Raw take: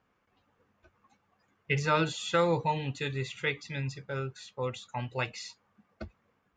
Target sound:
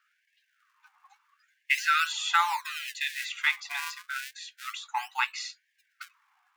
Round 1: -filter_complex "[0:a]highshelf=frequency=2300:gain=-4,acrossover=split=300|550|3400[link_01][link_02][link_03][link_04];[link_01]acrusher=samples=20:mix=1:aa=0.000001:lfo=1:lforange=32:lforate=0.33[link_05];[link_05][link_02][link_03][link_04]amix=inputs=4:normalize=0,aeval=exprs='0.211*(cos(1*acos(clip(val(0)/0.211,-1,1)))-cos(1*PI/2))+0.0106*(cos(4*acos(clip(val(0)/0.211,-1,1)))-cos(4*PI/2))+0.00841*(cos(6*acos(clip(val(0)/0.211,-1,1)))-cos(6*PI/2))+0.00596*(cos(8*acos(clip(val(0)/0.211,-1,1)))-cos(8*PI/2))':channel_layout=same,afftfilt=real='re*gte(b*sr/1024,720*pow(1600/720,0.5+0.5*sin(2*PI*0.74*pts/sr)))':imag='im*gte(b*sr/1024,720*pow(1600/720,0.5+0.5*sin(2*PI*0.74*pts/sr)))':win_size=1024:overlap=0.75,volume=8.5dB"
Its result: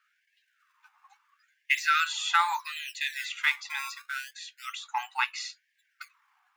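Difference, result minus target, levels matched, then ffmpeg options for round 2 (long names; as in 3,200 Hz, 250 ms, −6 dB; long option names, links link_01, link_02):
sample-and-hold swept by an LFO: distortion −9 dB
-filter_complex "[0:a]highshelf=frequency=2300:gain=-4,acrossover=split=300|550|3400[link_01][link_02][link_03][link_04];[link_01]acrusher=samples=57:mix=1:aa=0.000001:lfo=1:lforange=91.2:lforate=0.33[link_05];[link_05][link_02][link_03][link_04]amix=inputs=4:normalize=0,aeval=exprs='0.211*(cos(1*acos(clip(val(0)/0.211,-1,1)))-cos(1*PI/2))+0.0106*(cos(4*acos(clip(val(0)/0.211,-1,1)))-cos(4*PI/2))+0.00841*(cos(6*acos(clip(val(0)/0.211,-1,1)))-cos(6*PI/2))+0.00596*(cos(8*acos(clip(val(0)/0.211,-1,1)))-cos(8*PI/2))':channel_layout=same,afftfilt=real='re*gte(b*sr/1024,720*pow(1600/720,0.5+0.5*sin(2*PI*0.74*pts/sr)))':imag='im*gte(b*sr/1024,720*pow(1600/720,0.5+0.5*sin(2*PI*0.74*pts/sr)))':win_size=1024:overlap=0.75,volume=8.5dB"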